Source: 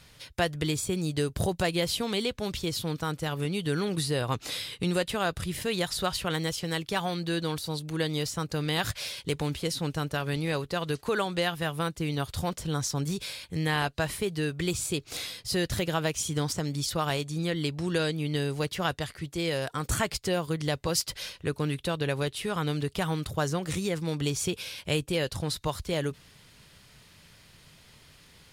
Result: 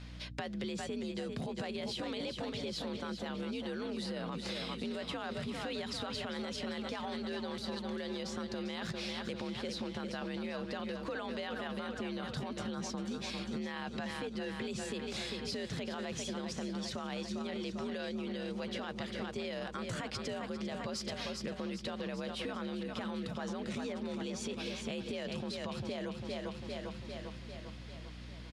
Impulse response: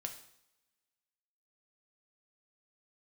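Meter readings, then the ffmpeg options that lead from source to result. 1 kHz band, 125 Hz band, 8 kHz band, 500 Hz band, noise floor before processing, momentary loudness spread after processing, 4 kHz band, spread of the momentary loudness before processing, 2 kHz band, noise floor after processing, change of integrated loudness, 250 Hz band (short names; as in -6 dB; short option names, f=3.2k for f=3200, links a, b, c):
-9.5 dB, -14.5 dB, -14.0 dB, -8.5 dB, -56 dBFS, 1 LU, -9.0 dB, 4 LU, -9.5 dB, -46 dBFS, -9.5 dB, -6.0 dB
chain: -af "aecho=1:1:398|796|1194|1592|1990|2388|2786:0.355|0.209|0.124|0.0729|0.043|0.0254|0.015,afreqshift=56,lowpass=4.8k,aeval=exprs='val(0)+0.00398*(sin(2*PI*60*n/s)+sin(2*PI*2*60*n/s)/2+sin(2*PI*3*60*n/s)/3+sin(2*PI*4*60*n/s)/4+sin(2*PI*5*60*n/s)/5)':c=same,alimiter=limit=-24dB:level=0:latency=1:release=13,acompressor=threshold=-37dB:ratio=6,volume=1dB"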